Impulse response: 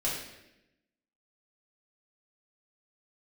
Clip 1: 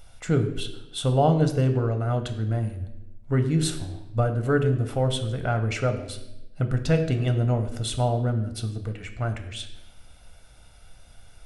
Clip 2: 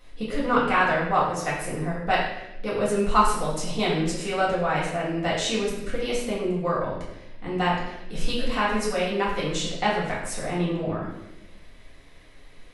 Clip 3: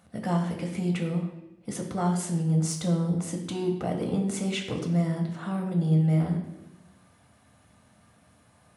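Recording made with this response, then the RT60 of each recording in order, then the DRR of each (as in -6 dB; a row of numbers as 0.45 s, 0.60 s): 2; 0.90 s, 0.90 s, 0.90 s; 6.5 dB, -7.0 dB, 1.5 dB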